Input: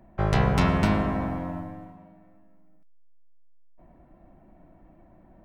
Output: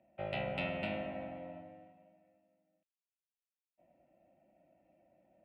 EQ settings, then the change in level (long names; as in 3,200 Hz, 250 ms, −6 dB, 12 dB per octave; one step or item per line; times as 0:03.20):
formant filter e
high-pass filter 52 Hz
phaser with its sweep stopped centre 1,700 Hz, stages 6
+7.5 dB